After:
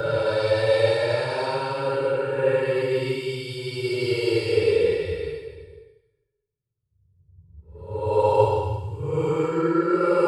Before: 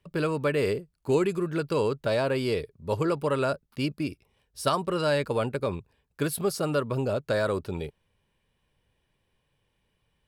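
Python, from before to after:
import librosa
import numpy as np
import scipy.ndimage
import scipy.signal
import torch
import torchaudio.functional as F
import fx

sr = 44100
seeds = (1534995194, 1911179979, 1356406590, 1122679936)

y = scipy.signal.sosfilt(scipy.signal.butter(2, 10000.0, 'lowpass', fs=sr, output='sos'), x)
y = fx.paulstretch(y, sr, seeds[0], factor=9.7, window_s=0.1, from_s=2.06)
y = y + 0.93 * np.pad(y, (int(2.2 * sr / 1000.0), 0))[:len(y)]
y = fx.echo_stepped(y, sr, ms=145, hz=1000.0, octaves=1.4, feedback_pct=70, wet_db=-4.0)
y = fx.band_widen(y, sr, depth_pct=70)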